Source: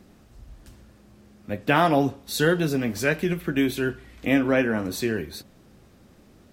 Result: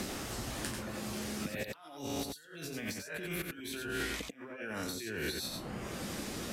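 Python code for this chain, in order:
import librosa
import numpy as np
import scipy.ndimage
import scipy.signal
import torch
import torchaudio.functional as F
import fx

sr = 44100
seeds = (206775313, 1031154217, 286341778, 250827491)

y = fx.spec_trails(x, sr, decay_s=0.56)
y = fx.doppler_pass(y, sr, speed_mps=8, closest_m=11.0, pass_at_s=3.02)
y = scipy.signal.sosfilt(scipy.signal.butter(2, 12000.0, 'lowpass', fs=sr, output='sos'), y)
y = fx.tilt_eq(y, sr, slope=2.0)
y = fx.over_compress(y, sr, threshold_db=-46.0, ratio=-1.0)
y = fx.dereverb_blind(y, sr, rt60_s=0.82)
y = y + 10.0 ** (-4.5 / 20.0) * np.pad(y, (int(89 * sr / 1000.0), 0))[:len(y)]
y = fx.band_squash(y, sr, depth_pct=100)
y = y * 10.0 ** (2.5 / 20.0)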